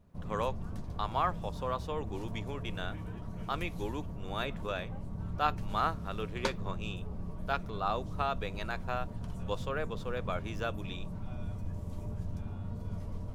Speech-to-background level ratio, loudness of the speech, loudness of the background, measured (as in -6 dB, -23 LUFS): 4.0 dB, -37.5 LUFS, -41.5 LUFS